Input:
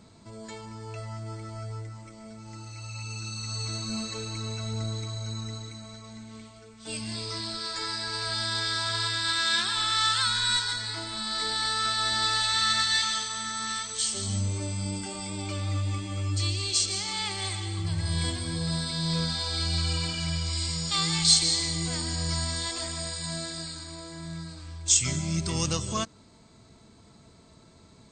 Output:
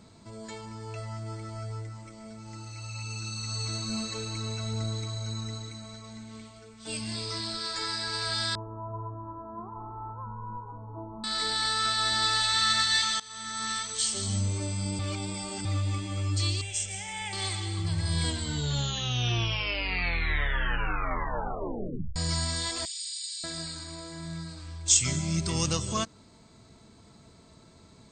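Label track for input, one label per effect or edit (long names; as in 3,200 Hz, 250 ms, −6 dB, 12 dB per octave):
8.550000	11.240000	Butterworth low-pass 1,100 Hz 72 dB per octave
13.200000	13.650000	fade in, from −19 dB
14.990000	15.650000	reverse
16.610000	17.330000	phaser with its sweep stopped centre 1,200 Hz, stages 6
18.190000	18.190000	tape stop 3.97 s
22.850000	23.440000	inverse Chebyshev high-pass filter stop band from 870 Hz, stop band 60 dB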